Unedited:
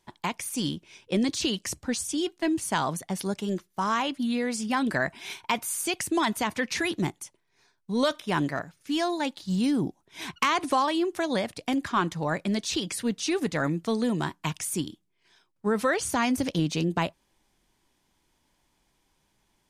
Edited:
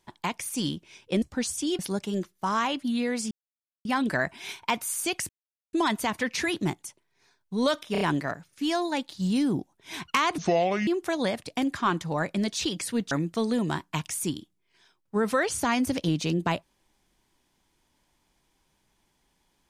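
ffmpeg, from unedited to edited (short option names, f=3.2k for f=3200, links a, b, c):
-filter_complex "[0:a]asplit=11[a][b][c][d][e][f][g][h][i][j][k];[a]atrim=end=1.222[l];[b]atrim=start=1.728:end=2.302[m];[c]atrim=start=3.138:end=4.66,asetpts=PTS-STARTPTS,afade=t=out:st=1.518:d=0.004:c=hsin,apad=pad_dur=0.54[n];[d]atrim=start=4.66:end=6.1,asetpts=PTS-STARTPTS,afade=t=in:d=0.004:c=hsin,afade=t=out:st=1.436:d=0.004:c=hsin,apad=pad_dur=0.44[o];[e]atrim=start=6.1:end=8.322,asetpts=PTS-STARTPTS,afade=t=in:d=0.004:c=hsin[p];[f]atrim=start=8.288:end=8.322[q];[g]atrim=start=8.288:end=8.322[r];[h]atrim=start=8.288:end=10.664[s];[i]atrim=start=10.66:end=10.98,asetpts=PTS-STARTPTS,asetrate=28665,aresample=44100[t];[j]atrim=start=10.976:end=13.222[u];[k]atrim=start=13.618[v];[l][m]acrossfade=d=0.004:c1=hsin:c2=hsin[w];[n][o][p]concat=n=3:v=0:a=1[x];[w][x]acrossfade=d=0.004:c1=hsin:c2=hsin[y];[y][q]acrossfade=d=0.004:c1=hsin:c2=hsin[z];[z][r]acrossfade=d=0.004:c1=hsin:c2=hsin[aa];[aa][s]acrossfade=d=0.004:c1=hsin:c2=hsin[ab];[ab][t]acrossfade=d=0.004:c1=hsin:c2=hsin[ac];[ac][u]acrossfade=d=0.004:c1=hsin:c2=hsin[ad];[ad][v]acrossfade=d=0.004:c1=hsin:c2=hsin"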